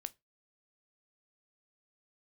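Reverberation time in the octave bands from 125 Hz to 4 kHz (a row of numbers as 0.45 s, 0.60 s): 0.25 s, 0.20 s, 0.20 s, 0.20 s, 0.20 s, 0.20 s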